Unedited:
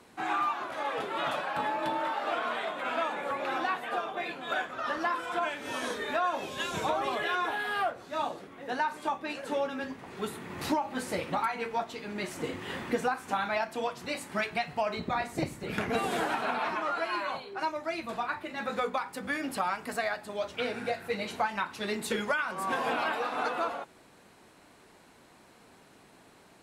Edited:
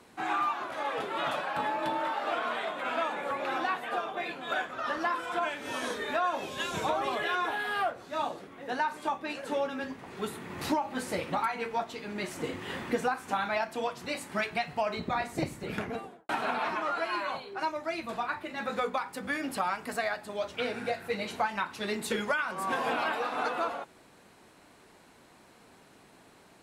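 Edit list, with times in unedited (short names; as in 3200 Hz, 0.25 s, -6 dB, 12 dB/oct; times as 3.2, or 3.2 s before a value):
15.6–16.29 studio fade out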